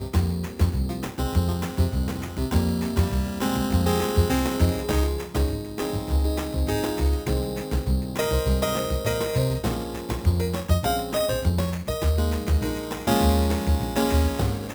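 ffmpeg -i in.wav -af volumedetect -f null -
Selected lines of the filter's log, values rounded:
mean_volume: -23.5 dB
max_volume: -8.2 dB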